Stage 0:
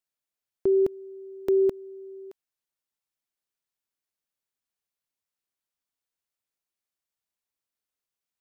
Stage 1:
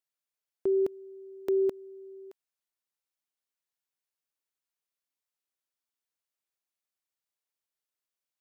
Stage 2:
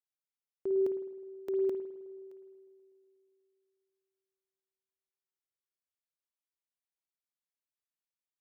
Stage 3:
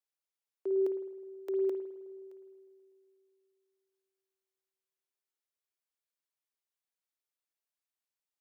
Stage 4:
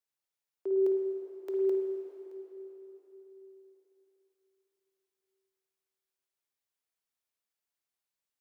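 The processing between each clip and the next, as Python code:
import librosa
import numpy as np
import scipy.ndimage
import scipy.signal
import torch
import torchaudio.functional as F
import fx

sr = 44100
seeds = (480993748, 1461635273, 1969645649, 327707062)

y1 = fx.low_shelf(x, sr, hz=190.0, db=-10.5)
y1 = F.gain(torch.from_numpy(y1), -2.5).numpy()
y2 = fx.echo_bbd(y1, sr, ms=122, stages=1024, feedback_pct=75, wet_db=-18.5)
y2 = fx.rev_spring(y2, sr, rt60_s=1.3, pass_ms=(52,), chirp_ms=35, drr_db=6.0)
y2 = fx.upward_expand(y2, sr, threshold_db=-34.0, expansion=1.5)
y2 = F.gain(torch.from_numpy(y2), -5.0).numpy()
y3 = scipy.signal.sosfilt(scipy.signal.butter(6, 310.0, 'highpass', fs=sr, output='sos'), y2)
y4 = fx.rev_plate(y3, sr, seeds[0], rt60_s=4.0, hf_ratio=0.8, predelay_ms=0, drr_db=3.0)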